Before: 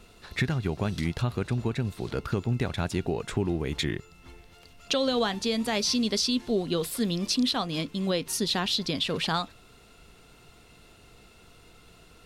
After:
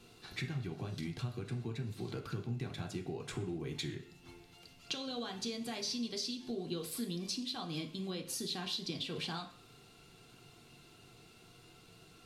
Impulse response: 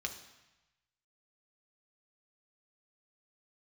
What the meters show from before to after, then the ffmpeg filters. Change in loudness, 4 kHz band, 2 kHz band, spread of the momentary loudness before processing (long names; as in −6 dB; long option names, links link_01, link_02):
−11.5 dB, −11.0 dB, −12.5 dB, 6 LU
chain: -filter_complex "[0:a]acompressor=threshold=-33dB:ratio=6[link_01];[1:a]atrim=start_sample=2205,asetrate=83790,aresample=44100[link_02];[link_01][link_02]afir=irnorm=-1:irlink=0,volume=1dB"